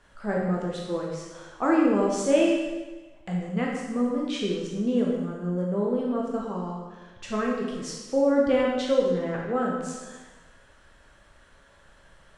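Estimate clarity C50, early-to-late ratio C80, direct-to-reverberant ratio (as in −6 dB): 1.0 dB, 3.5 dB, −3.0 dB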